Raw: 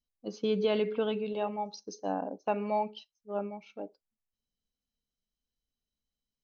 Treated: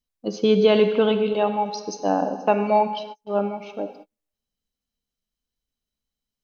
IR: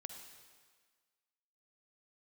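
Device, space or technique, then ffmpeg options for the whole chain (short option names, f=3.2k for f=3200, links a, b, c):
keyed gated reverb: -filter_complex "[0:a]asplit=3[a][b][c];[1:a]atrim=start_sample=2205[d];[b][d]afir=irnorm=-1:irlink=0[e];[c]apad=whole_len=283922[f];[e][f]sidechaingate=range=-44dB:threshold=-60dB:ratio=16:detection=peak,volume=8dB[g];[a][g]amix=inputs=2:normalize=0,volume=3.5dB"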